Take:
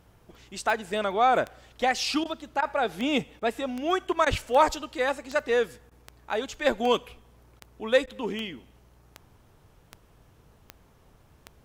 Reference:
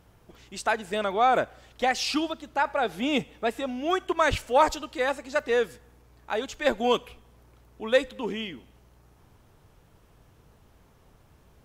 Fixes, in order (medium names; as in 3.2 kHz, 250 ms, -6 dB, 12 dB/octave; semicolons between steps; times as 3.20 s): de-click; interpolate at 2.24/2.61/3.40/4.25/5.90/7.60/8.06 s, 12 ms